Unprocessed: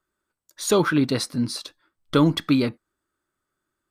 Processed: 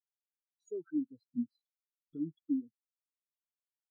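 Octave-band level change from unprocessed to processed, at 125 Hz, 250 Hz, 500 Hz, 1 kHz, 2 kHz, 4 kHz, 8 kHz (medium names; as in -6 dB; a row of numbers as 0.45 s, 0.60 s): -29.0 dB, -14.5 dB, -22.0 dB, under -40 dB, under -40 dB, under -40 dB, under -35 dB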